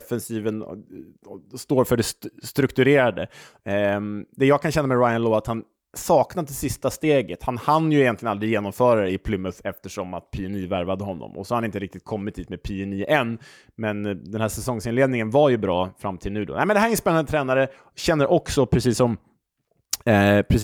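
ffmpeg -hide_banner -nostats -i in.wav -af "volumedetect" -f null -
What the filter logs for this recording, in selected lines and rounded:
mean_volume: -22.6 dB
max_volume: -6.8 dB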